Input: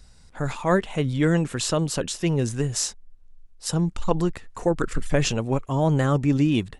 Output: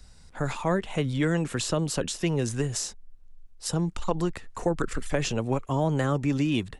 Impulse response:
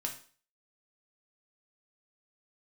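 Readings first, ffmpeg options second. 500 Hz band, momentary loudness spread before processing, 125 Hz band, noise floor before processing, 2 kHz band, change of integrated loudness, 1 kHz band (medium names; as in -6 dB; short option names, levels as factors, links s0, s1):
-3.5 dB, 7 LU, -4.5 dB, -50 dBFS, -3.0 dB, -4.0 dB, -3.0 dB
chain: -filter_complex "[0:a]acrossover=split=250|620[s0][s1][s2];[s0]acompressor=threshold=0.0398:ratio=4[s3];[s1]acompressor=threshold=0.0398:ratio=4[s4];[s2]acompressor=threshold=0.0355:ratio=4[s5];[s3][s4][s5]amix=inputs=3:normalize=0"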